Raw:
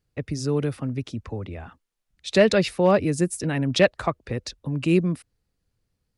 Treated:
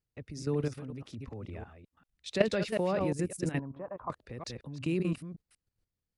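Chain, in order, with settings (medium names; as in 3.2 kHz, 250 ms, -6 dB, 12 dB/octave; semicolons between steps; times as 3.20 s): chunks repeated in reverse 185 ms, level -8 dB; level held to a coarse grid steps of 12 dB; 3.59–4.10 s: four-pole ladder low-pass 1.1 kHz, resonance 75%; trim -5 dB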